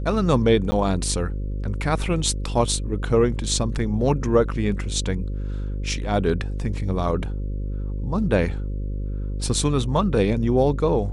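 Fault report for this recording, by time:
buzz 50 Hz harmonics 11 -27 dBFS
0.71–0.72 s: dropout 10 ms

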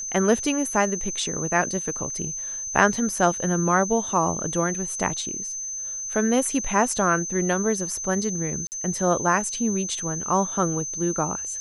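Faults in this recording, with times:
whine 6.2 kHz -29 dBFS
8.67–8.72 s: dropout 49 ms

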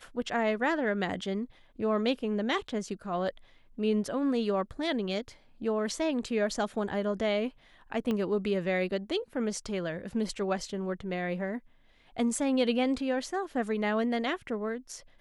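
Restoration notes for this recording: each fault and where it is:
8.11 s: pop -20 dBFS

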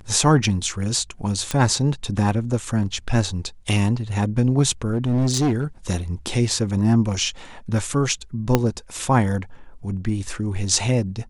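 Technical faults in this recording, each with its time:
1.51 s: pop -9 dBFS
4.89–5.64 s: clipped -16 dBFS
8.55 s: pop -2 dBFS

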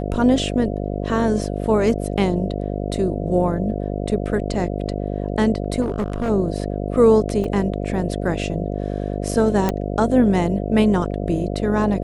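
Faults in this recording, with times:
buzz 50 Hz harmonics 14 -25 dBFS
5.81–6.30 s: clipped -18 dBFS
7.44 s: dropout 3.3 ms
9.69 s: pop -7 dBFS

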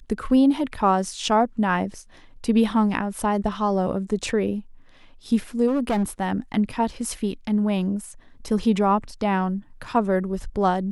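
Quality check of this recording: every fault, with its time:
5.67–6.04 s: clipped -18.5 dBFS

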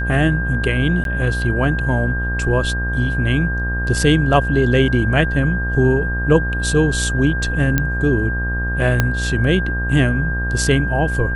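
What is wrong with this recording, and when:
buzz 60 Hz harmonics 25 -22 dBFS
whine 1.6 kHz -23 dBFS
1.04–1.05 s: dropout 12 ms
7.78 s: pop -3 dBFS
9.00 s: pop -2 dBFS

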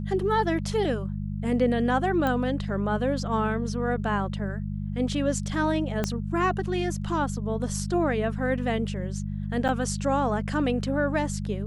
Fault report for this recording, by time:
hum 50 Hz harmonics 4 -31 dBFS
2.27 s: pop -15 dBFS
6.04 s: pop -12 dBFS
9.68–9.69 s: dropout 7.7 ms

